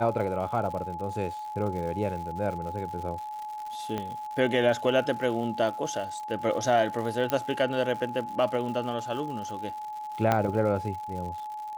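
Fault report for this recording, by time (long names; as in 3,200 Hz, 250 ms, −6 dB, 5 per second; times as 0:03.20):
surface crackle 170 per second −37 dBFS
whistle 850 Hz −34 dBFS
0:03.98: click −18 dBFS
0:07.30: click −12 dBFS
0:10.32: click −10 dBFS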